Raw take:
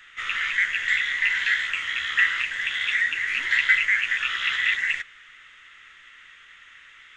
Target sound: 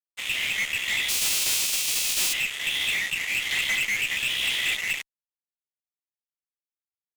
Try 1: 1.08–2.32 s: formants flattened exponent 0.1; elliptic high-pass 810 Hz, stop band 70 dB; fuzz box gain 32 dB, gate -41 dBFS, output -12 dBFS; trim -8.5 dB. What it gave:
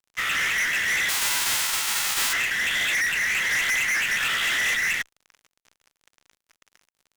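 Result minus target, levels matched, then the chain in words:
1 kHz band +9.0 dB
1.08–2.32 s: formants flattened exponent 0.1; elliptic high-pass 2.4 kHz, stop band 70 dB; fuzz box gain 32 dB, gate -41 dBFS, output -12 dBFS; trim -8.5 dB

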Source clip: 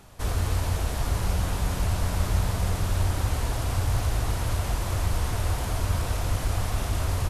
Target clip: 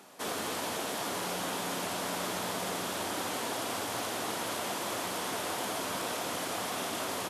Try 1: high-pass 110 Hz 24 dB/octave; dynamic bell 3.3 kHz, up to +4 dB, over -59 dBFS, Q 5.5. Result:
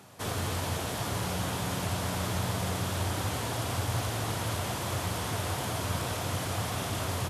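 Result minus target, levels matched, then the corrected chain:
125 Hz band +15.0 dB
high-pass 220 Hz 24 dB/octave; dynamic bell 3.3 kHz, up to +4 dB, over -59 dBFS, Q 5.5

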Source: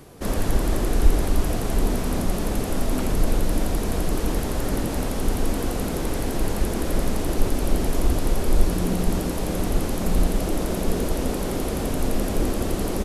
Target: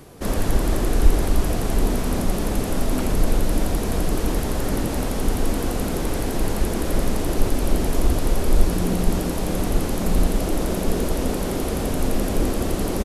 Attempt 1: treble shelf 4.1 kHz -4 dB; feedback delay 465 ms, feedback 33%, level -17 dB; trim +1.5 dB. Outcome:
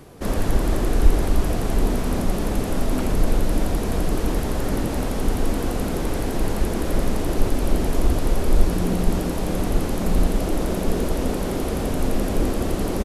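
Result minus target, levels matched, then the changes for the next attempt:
8 kHz band -3.0 dB
remove: treble shelf 4.1 kHz -4 dB

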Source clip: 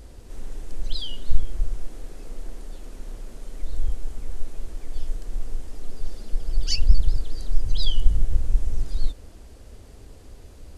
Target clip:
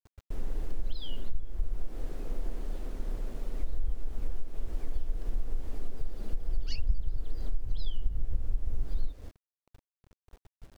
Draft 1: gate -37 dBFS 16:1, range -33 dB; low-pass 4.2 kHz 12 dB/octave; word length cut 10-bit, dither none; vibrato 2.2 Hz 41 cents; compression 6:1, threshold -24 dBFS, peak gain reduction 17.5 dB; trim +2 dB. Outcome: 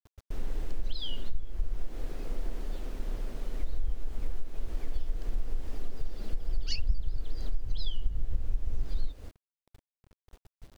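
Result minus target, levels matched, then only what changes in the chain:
4 kHz band +6.0 dB
add after low-pass: treble shelf 2.2 kHz -9 dB

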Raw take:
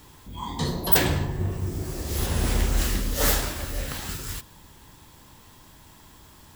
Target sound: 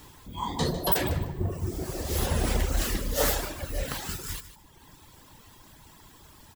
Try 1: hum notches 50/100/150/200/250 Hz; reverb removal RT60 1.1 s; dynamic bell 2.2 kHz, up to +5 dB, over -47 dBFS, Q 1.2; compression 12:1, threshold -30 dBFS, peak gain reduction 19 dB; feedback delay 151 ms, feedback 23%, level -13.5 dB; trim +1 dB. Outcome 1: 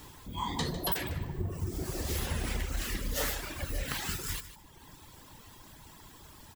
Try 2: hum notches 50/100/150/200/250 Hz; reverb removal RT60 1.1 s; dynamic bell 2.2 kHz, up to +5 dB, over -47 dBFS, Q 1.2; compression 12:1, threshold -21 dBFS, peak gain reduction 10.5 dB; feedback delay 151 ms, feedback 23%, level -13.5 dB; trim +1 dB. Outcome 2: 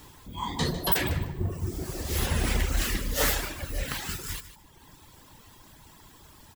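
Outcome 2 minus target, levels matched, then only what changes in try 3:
500 Hz band -3.5 dB
change: dynamic bell 590 Hz, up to +5 dB, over -47 dBFS, Q 1.2

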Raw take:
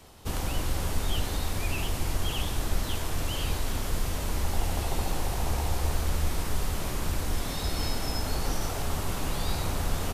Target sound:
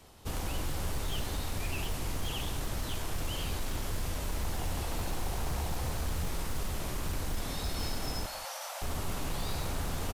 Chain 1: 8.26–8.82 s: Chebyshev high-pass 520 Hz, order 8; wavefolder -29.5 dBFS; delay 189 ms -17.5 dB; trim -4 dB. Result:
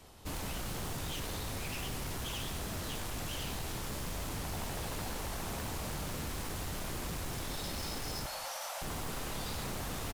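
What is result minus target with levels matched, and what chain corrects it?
wavefolder: distortion +16 dB
8.26–8.82 s: Chebyshev high-pass 520 Hz, order 8; wavefolder -23 dBFS; delay 189 ms -17.5 dB; trim -4 dB

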